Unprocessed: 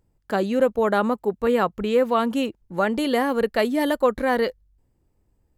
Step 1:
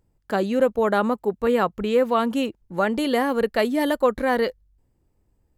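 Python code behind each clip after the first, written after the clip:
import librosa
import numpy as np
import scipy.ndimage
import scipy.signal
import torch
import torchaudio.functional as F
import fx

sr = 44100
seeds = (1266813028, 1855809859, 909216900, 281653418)

y = x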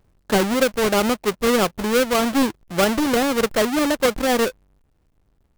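y = fx.halfwave_hold(x, sr)
y = fx.rider(y, sr, range_db=10, speed_s=0.5)
y = F.gain(torch.from_numpy(y), -2.0).numpy()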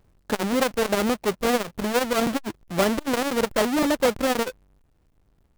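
y = fx.buffer_crackle(x, sr, first_s=0.7, period_s=0.52, block=256, kind='repeat')
y = fx.transformer_sat(y, sr, knee_hz=440.0)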